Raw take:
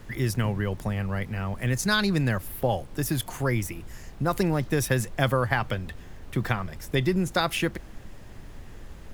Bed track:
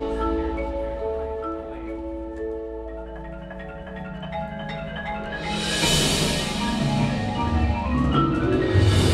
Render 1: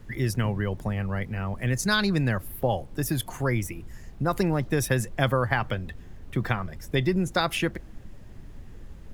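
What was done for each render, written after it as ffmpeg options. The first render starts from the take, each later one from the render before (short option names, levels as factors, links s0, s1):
-af "afftdn=nr=7:nf=-44"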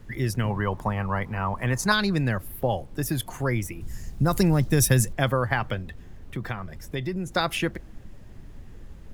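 -filter_complex "[0:a]asettb=1/sr,asplit=3[s0][s1][s2];[s0]atrim=end=0.504[s3];[s1]atrim=start=0.5:end=1.92,asetpts=PTS-STARTPTS,afade=t=in:d=0.004:c=qsin,afade=t=out:st=1.416:d=0.004:c=qsin,equalizer=f=1000:w=1.7:g=14[s4];[s2]atrim=start=1.916[s5];[s3][s4]acrossfade=d=0.004:c1=hsin:c2=qsin[s6];[s6][s5]acrossfade=d=0.004:c1=qsin:c2=hsin,asettb=1/sr,asplit=3[s7][s8][s9];[s7]atrim=end=3.814[s10];[s8]atrim=start=3.81:end=5.13,asetpts=PTS-STARTPTS,afade=t=in:d=0.004:c=qsin,afade=t=out:st=1.316:d=0.004:c=qsin,bass=f=250:g=7,treble=f=4000:g=10[s11];[s9]atrim=start=5.126[s12];[s10][s11]acrossfade=d=0.004:c1=hsin:c2=qsin[s13];[s13][s12]acrossfade=d=0.004:c1=qsin:c2=hsin,asettb=1/sr,asplit=3[s14][s15][s16];[s14]atrim=end=5.824[s17];[s15]atrim=start=5.82:end=7.35,asetpts=PTS-STARTPTS,afade=t=in:d=0.004:c=qsin,afade=t=out:st=1.526:d=0.004:c=qsin,acompressor=threshold=0.0178:ratio=1.5:attack=3.2:release=140:knee=1:detection=peak[s18];[s16]atrim=start=7.346[s19];[s17][s18]acrossfade=d=0.004:c1=hsin:c2=qsin[s20];[s20][s19]acrossfade=d=0.004:c1=qsin:c2=hsin"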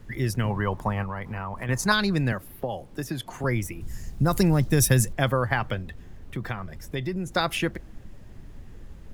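-filter_complex "[0:a]asettb=1/sr,asplit=3[s0][s1][s2];[s0]atrim=end=1.034[s3];[s1]atrim=start=1.03:end=1.69,asetpts=PTS-STARTPTS,afade=t=in:d=0.004:c=qsin,afade=t=out:st=0.656:d=0.004:c=qsin,acompressor=threshold=0.0398:ratio=6:attack=3.2:release=140:knee=1:detection=peak[s4];[s2]atrim=start=1.686[s5];[s3][s4]acrossfade=d=0.004:c1=hsin:c2=qsin[s6];[s6][s5]acrossfade=d=0.004:c1=qsin:c2=hsin,asettb=1/sr,asplit=3[s7][s8][s9];[s7]atrim=end=2.324[s10];[s8]atrim=start=2.32:end=3.44,asetpts=PTS-STARTPTS,afade=t=in:d=0.004:c=qsin,afade=t=out:st=1.116:d=0.004:c=qsin,acrossover=split=140|6800[s11][s12][s13];[s11]acompressor=threshold=0.00562:ratio=4[s14];[s12]acompressor=threshold=0.0447:ratio=4[s15];[s13]acompressor=threshold=0.00355:ratio=4[s16];[s14][s15][s16]amix=inputs=3:normalize=0[s17];[s9]atrim=start=3.436[s18];[s10][s17]acrossfade=d=0.004:c1=hsin:c2=qsin[s19];[s19][s18]acrossfade=d=0.004:c1=qsin:c2=hsin"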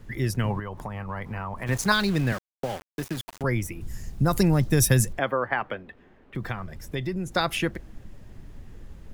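-filter_complex "[0:a]asettb=1/sr,asplit=3[s0][s1][s2];[s0]atrim=end=0.594[s3];[s1]atrim=start=0.59:end=1.09,asetpts=PTS-STARTPTS,afade=t=in:d=0.004:c=qsin,afade=t=out:st=0.496:d=0.004:c=qsin,acompressor=threshold=0.0316:ratio=6:attack=3.2:release=140:knee=1:detection=peak[s4];[s2]atrim=start=1.086[s5];[s3][s4]acrossfade=d=0.004:c1=hsin:c2=qsin[s6];[s6][s5]acrossfade=d=0.004:c1=qsin:c2=hsin,asplit=3[s7][s8][s9];[s7]afade=t=out:st=1.66:d=0.02[s10];[s8]aeval=exprs='val(0)*gte(abs(val(0)),0.0211)':c=same,afade=t=in:st=1.66:d=0.02,afade=t=out:st=3.41:d=0.02[s11];[s9]afade=t=in:st=3.41:d=0.02[s12];[s10][s11][s12]amix=inputs=3:normalize=0,asettb=1/sr,asplit=3[s13][s14][s15];[s13]atrim=end=5.194[s16];[s14]atrim=start=5.19:end=6.35,asetpts=PTS-STARTPTS,afade=t=in:d=0.004:c=qsin,afade=t=out:st=1.156:d=0.004:c=qsin,acrossover=split=230 3100:gain=0.112 1 0.0891[s17][s18][s19];[s17][s18][s19]amix=inputs=3:normalize=0[s20];[s15]atrim=start=6.346[s21];[s16][s20]acrossfade=d=0.004:c1=hsin:c2=qsin[s22];[s22][s21]acrossfade=d=0.004:c1=qsin:c2=hsin"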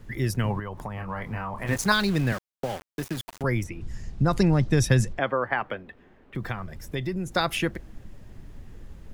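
-filter_complex "[0:a]asettb=1/sr,asplit=3[s0][s1][s2];[s0]atrim=end=0.954[s3];[s1]atrim=start=0.95:end=1.76,asetpts=PTS-STARTPTS,afade=t=in:d=0.004:c=qsin,afade=t=out:st=0.806:d=0.004:c=qsin,asplit=2[s4][s5];[s5]adelay=27,volume=0.562[s6];[s4][s6]amix=inputs=2:normalize=0,atrim=end_sample=35721[s7];[s2]atrim=start=1.756[s8];[s3][s7]acrossfade=d=0.004:c1=hsin:c2=qsin[s9];[s9][s8]acrossfade=d=0.004:c1=qsin:c2=hsin,asplit=3[s10][s11][s12];[s10]afade=t=out:st=3.63:d=0.02[s13];[s11]lowpass=5400,afade=t=in:st=3.63:d=0.02,afade=t=out:st=5.42:d=0.02[s14];[s12]afade=t=in:st=5.42:d=0.02[s15];[s13][s14][s15]amix=inputs=3:normalize=0"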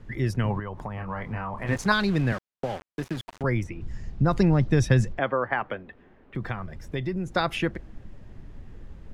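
-af "aemphasis=mode=reproduction:type=50fm"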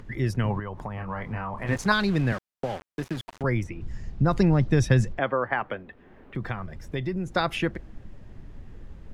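-af "acompressor=mode=upward:threshold=0.00794:ratio=2.5"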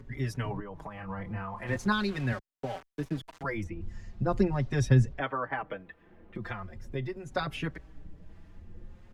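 -filter_complex "[0:a]acrossover=split=620[s0][s1];[s0]aeval=exprs='val(0)*(1-0.5/2+0.5/2*cos(2*PI*1.6*n/s))':c=same[s2];[s1]aeval=exprs='val(0)*(1-0.5/2-0.5/2*cos(2*PI*1.6*n/s))':c=same[s3];[s2][s3]amix=inputs=2:normalize=0,asplit=2[s4][s5];[s5]adelay=4.9,afreqshift=0.41[s6];[s4][s6]amix=inputs=2:normalize=1"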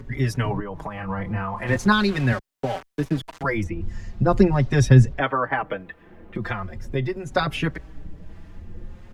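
-af "volume=2.99,alimiter=limit=0.794:level=0:latency=1"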